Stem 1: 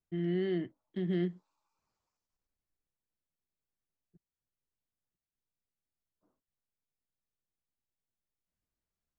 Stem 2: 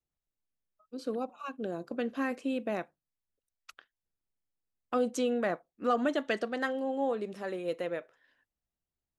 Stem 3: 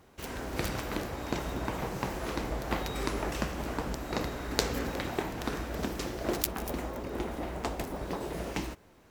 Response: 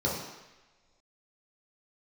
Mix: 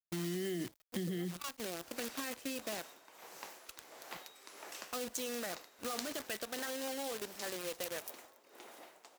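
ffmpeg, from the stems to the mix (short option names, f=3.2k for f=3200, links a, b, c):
-filter_complex "[0:a]dynaudnorm=f=330:g=3:m=11.5dB,volume=-2dB[a];[1:a]highpass=f=230:p=1,alimiter=level_in=2dB:limit=-24dB:level=0:latency=1:release=22,volume=-2dB,volume=-5.5dB[b];[2:a]highpass=500,tremolo=f=1.5:d=0.73,adelay=1400,volume=-14.5dB[c];[a][b]amix=inputs=2:normalize=0,acrusher=bits=8:dc=4:mix=0:aa=0.000001,alimiter=level_in=0.5dB:limit=-24dB:level=0:latency=1,volume=-0.5dB,volume=0dB[d];[c][d]amix=inputs=2:normalize=0,highpass=43,highshelf=f=2.8k:g=12,acompressor=threshold=-35dB:ratio=6"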